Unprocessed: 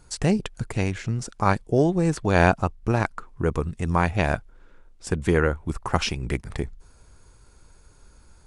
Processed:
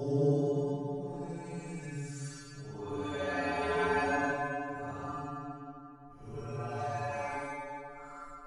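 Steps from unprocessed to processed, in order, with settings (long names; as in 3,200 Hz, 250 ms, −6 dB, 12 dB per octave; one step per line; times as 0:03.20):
sample-and-hold tremolo
stiff-string resonator 140 Hz, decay 0.62 s, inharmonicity 0.002
extreme stretch with random phases 5.8×, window 0.10 s, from 0:01.78
level +4.5 dB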